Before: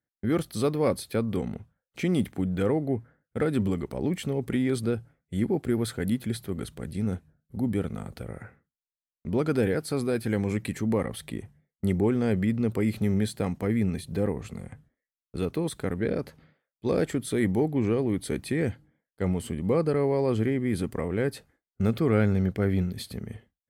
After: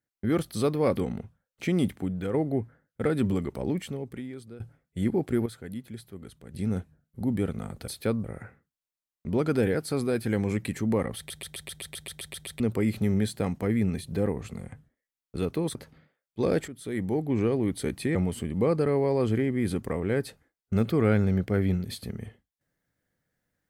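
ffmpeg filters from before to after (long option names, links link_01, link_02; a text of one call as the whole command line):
ffmpeg -i in.wav -filter_complex "[0:a]asplit=22[link_01][link_02][link_03][link_04][link_05][link_06][link_07][link_08][link_09][link_10][link_11][link_12][link_13][link_14][link_15][link_16][link_17][link_18][link_19][link_20][link_21][link_22];[link_01]atrim=end=0.972[link_23];[link_02]atrim=start=1.328:end=2.7,asetpts=PTS-STARTPTS,afade=type=out:start_time=0.852:duration=0.52:silence=0.473151[link_24];[link_03]atrim=start=2.7:end=4.96,asetpts=PTS-STARTPTS,afade=type=in:duration=0.004:curve=hsin:silence=0.473151,afade=type=out:start_time=1.31:duration=0.95:curve=qua:silence=0.125893[link_25];[link_04]atrim=start=4.96:end=5.822,asetpts=PTS-STARTPTS,afade=type=in:duration=0.004:curve=hsin:silence=0.125893[link_26];[link_05]atrim=start=5.818:end=6.902,asetpts=PTS-STARTPTS,volume=-10.5dB[link_27];[link_06]atrim=start=6.898:end=8.242[link_28];[link_07]atrim=start=0.968:end=1.332[link_29];[link_08]atrim=start=8.238:end=11.302[link_30];[link_09]atrim=start=11.168:end=11.302[link_31];[link_10]atrim=start=11.168:end=11.302[link_32];[link_11]atrim=start=11.168:end=11.302[link_33];[link_12]atrim=start=11.168:end=11.302[link_34];[link_13]atrim=start=11.168:end=11.302[link_35];[link_14]atrim=start=11.168:end=11.302[link_36];[link_15]atrim=start=11.168:end=11.302[link_37];[link_16]atrim=start=11.168:end=11.302[link_38];[link_17]atrim=start=11.168:end=11.302[link_39];[link_18]atrim=start=11.168:end=11.302[link_40];[link_19]atrim=start=12.598:end=15.752[link_41];[link_20]atrim=start=16.208:end=17.14,asetpts=PTS-STARTPTS,afade=type=out:start_time=0.928:duration=0.004:curve=hsin:silence=0.188365[link_42];[link_21]atrim=start=17.14:end=18.612,asetpts=PTS-STARTPTS,afade=type=in:duration=0.74:silence=0.188365[link_43];[link_22]atrim=start=19.228[link_44];[link_24][link_25][link_26]concat=n=3:v=0:a=1[link_45];[link_23][link_45]acrossfade=duration=0.004:curve1=hsin:curve2=hsin[link_46];[link_46][link_27]acrossfade=duration=0.004:curve1=hsin:curve2=hsin[link_47];[link_47][link_28]acrossfade=duration=0.004:curve1=hsin:curve2=hsin[link_48];[link_48][link_29]acrossfade=duration=0.004:curve1=hsin:curve2=hsin[link_49];[link_49][link_30]acrossfade=duration=0.004:curve1=hsin:curve2=hsin[link_50];[link_50][link_31]acrossfade=duration=0.004:curve1=hsin:curve2=hsin[link_51];[link_51][link_32]acrossfade=duration=0.004:curve1=hsin:curve2=hsin[link_52];[link_52][link_33]acrossfade=duration=0.004:curve1=hsin:curve2=hsin[link_53];[link_53][link_34]acrossfade=duration=0.004:curve1=hsin:curve2=hsin[link_54];[link_54][link_35]acrossfade=duration=0.004:curve1=hsin:curve2=hsin[link_55];[link_55][link_36]acrossfade=duration=0.004:curve1=hsin:curve2=hsin[link_56];[link_56][link_37]acrossfade=duration=0.004:curve1=hsin:curve2=hsin[link_57];[link_57][link_38]acrossfade=duration=0.004:curve1=hsin:curve2=hsin[link_58];[link_58][link_39]acrossfade=duration=0.004:curve1=hsin:curve2=hsin[link_59];[link_59][link_40]acrossfade=duration=0.004:curve1=hsin:curve2=hsin[link_60];[link_60][link_41]acrossfade=duration=0.004:curve1=hsin:curve2=hsin[link_61];[link_42][link_43]concat=n=2:v=0:a=1[link_62];[link_61][link_62]acrossfade=duration=0.004:curve1=hsin:curve2=hsin[link_63];[link_63][link_44]acrossfade=duration=0.004:curve1=hsin:curve2=hsin" out.wav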